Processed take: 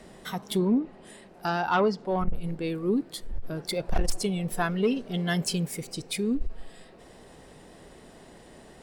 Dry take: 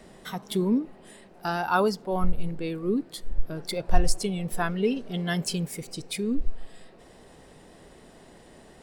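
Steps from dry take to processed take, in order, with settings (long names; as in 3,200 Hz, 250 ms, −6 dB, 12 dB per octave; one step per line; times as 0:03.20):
0:00.57–0:02.35: treble cut that deepens with the level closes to 2,100 Hz, closed at −17 dBFS
harmonic generator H 5 −11 dB, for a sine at −6 dBFS
level −6.5 dB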